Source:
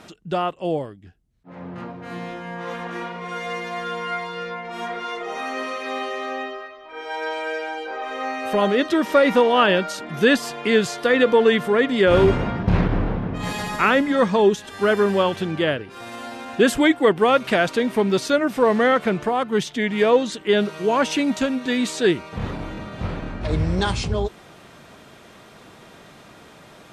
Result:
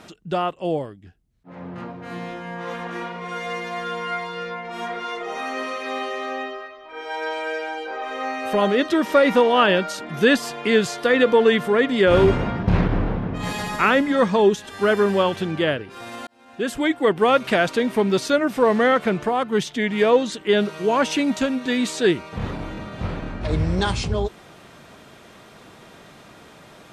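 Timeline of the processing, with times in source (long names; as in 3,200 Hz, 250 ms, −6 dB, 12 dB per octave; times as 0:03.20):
0:16.27–0:17.28: fade in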